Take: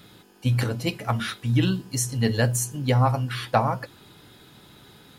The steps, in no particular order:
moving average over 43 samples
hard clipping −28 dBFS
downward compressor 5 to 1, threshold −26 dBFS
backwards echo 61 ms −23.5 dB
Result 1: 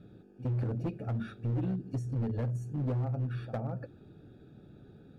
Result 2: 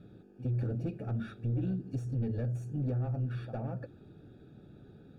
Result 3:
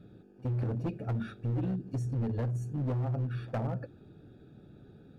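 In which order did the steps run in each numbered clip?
backwards echo, then downward compressor, then moving average, then hard clipping
backwards echo, then downward compressor, then hard clipping, then moving average
moving average, then downward compressor, then hard clipping, then backwards echo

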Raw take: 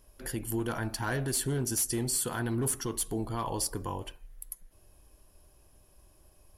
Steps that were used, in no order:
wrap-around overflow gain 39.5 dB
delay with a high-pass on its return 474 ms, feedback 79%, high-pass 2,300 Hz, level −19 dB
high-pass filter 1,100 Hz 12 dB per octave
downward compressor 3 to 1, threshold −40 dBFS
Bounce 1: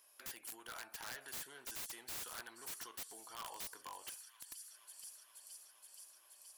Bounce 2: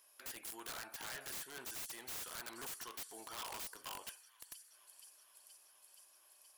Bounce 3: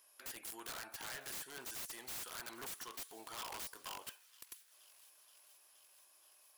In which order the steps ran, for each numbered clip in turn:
delay with a high-pass on its return, then downward compressor, then high-pass filter, then wrap-around overflow
high-pass filter, then downward compressor, then delay with a high-pass on its return, then wrap-around overflow
high-pass filter, then downward compressor, then wrap-around overflow, then delay with a high-pass on its return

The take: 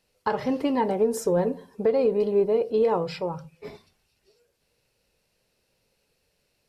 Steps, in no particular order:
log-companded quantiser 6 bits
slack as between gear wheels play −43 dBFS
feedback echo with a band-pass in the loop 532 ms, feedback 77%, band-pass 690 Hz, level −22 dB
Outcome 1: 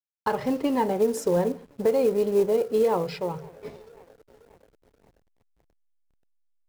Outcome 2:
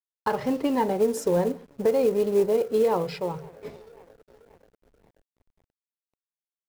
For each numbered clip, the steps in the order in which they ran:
feedback echo with a band-pass in the loop, then log-companded quantiser, then slack as between gear wheels
feedback echo with a band-pass in the loop, then slack as between gear wheels, then log-companded quantiser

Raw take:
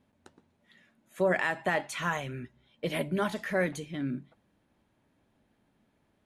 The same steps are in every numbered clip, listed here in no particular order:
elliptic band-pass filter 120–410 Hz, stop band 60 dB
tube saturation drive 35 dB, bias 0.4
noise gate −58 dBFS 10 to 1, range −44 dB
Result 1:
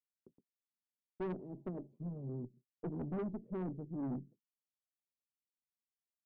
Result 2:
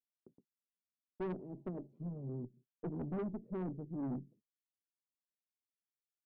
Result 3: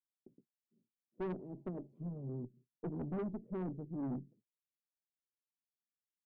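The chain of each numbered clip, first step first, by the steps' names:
elliptic band-pass filter, then tube saturation, then noise gate
elliptic band-pass filter, then noise gate, then tube saturation
noise gate, then elliptic band-pass filter, then tube saturation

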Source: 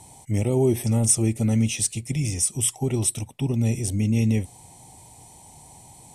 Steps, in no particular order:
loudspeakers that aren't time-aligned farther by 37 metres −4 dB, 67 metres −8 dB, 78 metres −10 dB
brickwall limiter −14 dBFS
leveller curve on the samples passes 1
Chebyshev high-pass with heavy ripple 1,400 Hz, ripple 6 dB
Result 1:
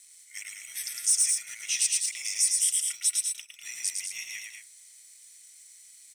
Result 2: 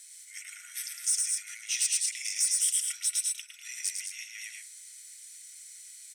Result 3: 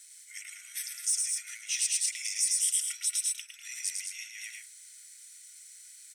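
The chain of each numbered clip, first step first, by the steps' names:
Chebyshev high-pass with heavy ripple, then leveller curve on the samples, then loudspeakers that aren't time-aligned, then brickwall limiter
loudspeakers that aren't time-aligned, then brickwall limiter, then leveller curve on the samples, then Chebyshev high-pass with heavy ripple
leveller curve on the samples, then loudspeakers that aren't time-aligned, then brickwall limiter, then Chebyshev high-pass with heavy ripple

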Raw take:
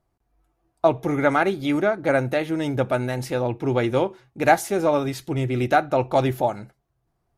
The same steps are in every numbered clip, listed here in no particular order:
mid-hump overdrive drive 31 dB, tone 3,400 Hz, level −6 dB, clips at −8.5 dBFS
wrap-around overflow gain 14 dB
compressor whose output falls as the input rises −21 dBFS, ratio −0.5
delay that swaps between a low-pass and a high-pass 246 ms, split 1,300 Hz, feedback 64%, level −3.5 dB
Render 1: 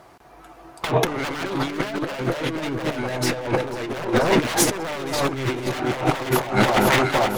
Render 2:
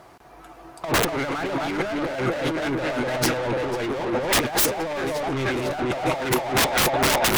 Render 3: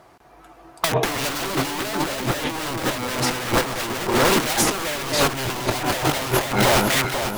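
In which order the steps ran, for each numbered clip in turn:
wrap-around overflow, then mid-hump overdrive, then delay that swaps between a low-pass and a high-pass, then compressor whose output falls as the input rises
delay that swaps between a low-pass and a high-pass, then mid-hump overdrive, then compressor whose output falls as the input rises, then wrap-around overflow
mid-hump overdrive, then wrap-around overflow, then delay that swaps between a low-pass and a high-pass, then compressor whose output falls as the input rises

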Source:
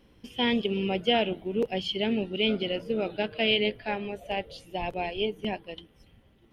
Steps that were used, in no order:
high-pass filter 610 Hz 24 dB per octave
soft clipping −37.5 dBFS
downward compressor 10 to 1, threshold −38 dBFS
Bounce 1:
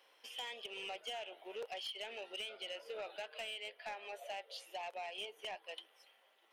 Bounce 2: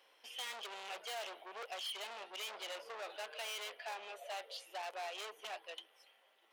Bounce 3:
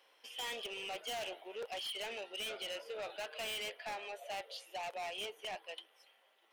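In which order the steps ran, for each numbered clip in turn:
high-pass filter, then downward compressor, then soft clipping
soft clipping, then high-pass filter, then downward compressor
high-pass filter, then soft clipping, then downward compressor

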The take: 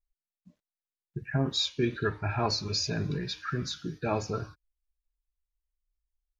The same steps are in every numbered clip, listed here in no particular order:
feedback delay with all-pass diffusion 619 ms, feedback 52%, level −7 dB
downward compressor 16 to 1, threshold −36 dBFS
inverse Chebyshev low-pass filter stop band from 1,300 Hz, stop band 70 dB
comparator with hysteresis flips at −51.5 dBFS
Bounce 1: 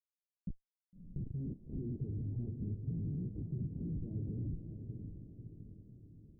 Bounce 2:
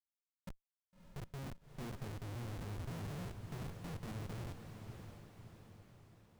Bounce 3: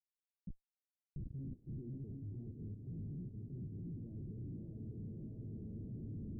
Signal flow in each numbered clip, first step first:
comparator with hysteresis, then inverse Chebyshev low-pass filter, then downward compressor, then feedback delay with all-pass diffusion
inverse Chebyshev low-pass filter, then downward compressor, then comparator with hysteresis, then feedback delay with all-pass diffusion
feedback delay with all-pass diffusion, then downward compressor, then comparator with hysteresis, then inverse Chebyshev low-pass filter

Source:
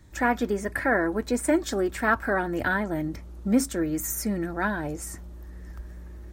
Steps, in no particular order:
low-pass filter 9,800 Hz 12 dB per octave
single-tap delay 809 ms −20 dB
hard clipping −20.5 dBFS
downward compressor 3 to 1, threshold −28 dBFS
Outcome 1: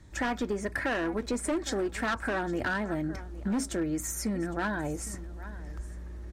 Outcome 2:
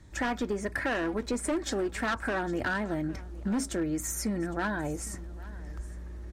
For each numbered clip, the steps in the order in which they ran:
single-tap delay, then hard clipping, then downward compressor, then low-pass filter
hard clipping, then low-pass filter, then downward compressor, then single-tap delay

